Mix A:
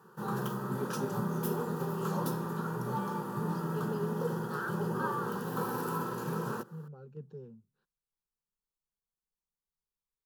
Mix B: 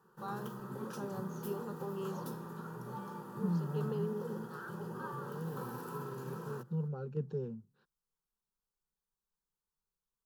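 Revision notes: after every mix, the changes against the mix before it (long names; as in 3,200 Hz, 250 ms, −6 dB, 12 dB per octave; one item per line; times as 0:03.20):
second voice +8.5 dB
background −9.5 dB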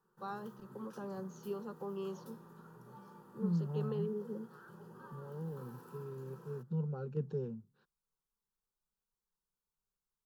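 background −11.0 dB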